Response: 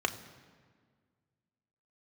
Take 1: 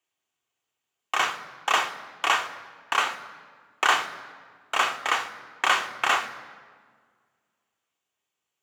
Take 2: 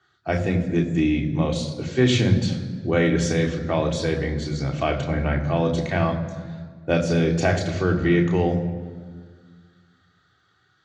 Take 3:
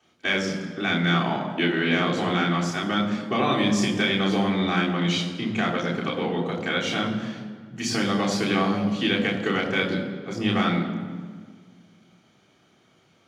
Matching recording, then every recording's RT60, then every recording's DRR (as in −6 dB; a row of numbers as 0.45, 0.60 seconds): 1; 1.7, 1.7, 1.7 seconds; 5.5, 1.0, −8.5 decibels